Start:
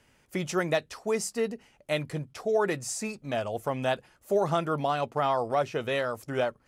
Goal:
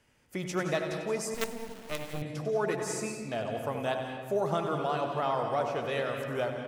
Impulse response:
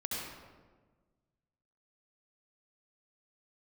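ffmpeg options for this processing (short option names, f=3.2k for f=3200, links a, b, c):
-filter_complex "[0:a]asplit=2[a][b];[b]adelay=80,lowpass=f=2k:p=1,volume=-9.5dB,asplit=2[c][d];[d]adelay=80,lowpass=f=2k:p=1,volume=0.38,asplit=2[e][f];[f]adelay=80,lowpass=f=2k:p=1,volume=0.38,asplit=2[g][h];[h]adelay=80,lowpass=f=2k:p=1,volume=0.38[i];[a][c][e][g][i]amix=inputs=5:normalize=0,asplit=2[j][k];[1:a]atrim=start_sample=2205,adelay=97[l];[k][l]afir=irnorm=-1:irlink=0,volume=-7dB[m];[j][m]amix=inputs=2:normalize=0,asettb=1/sr,asplit=3[n][o][p];[n]atrim=end=1.344[q];[o]atrim=start=1.34:end=2.22,asetpts=PTS-STARTPTS,afade=t=in:d=0.004:c=qsin,afade=t=out:st=0.876:d=0.004:c=qsin,acrusher=bits=4:dc=4:mix=0:aa=0.000001[r];[p]atrim=start=2.216[s];[q][r]acrossfade=d=0.004:c1=hsin:c2=qsin[t];[t][s]acrossfade=d=0.004:c1=qsin:c2=hsin,volume=-4.5dB"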